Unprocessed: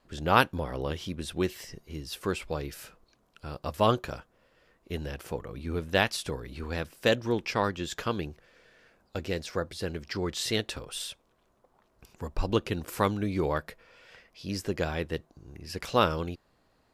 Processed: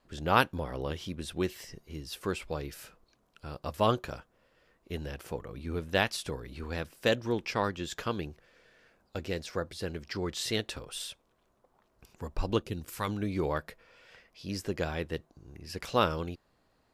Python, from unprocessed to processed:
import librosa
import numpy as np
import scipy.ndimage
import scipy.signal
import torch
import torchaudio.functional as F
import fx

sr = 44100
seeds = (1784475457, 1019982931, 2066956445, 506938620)

y = fx.peak_eq(x, sr, hz=fx.line((12.61, 2000.0), (13.07, 300.0)), db=-10.5, octaves=2.8, at=(12.61, 13.07), fade=0.02)
y = F.gain(torch.from_numpy(y), -2.5).numpy()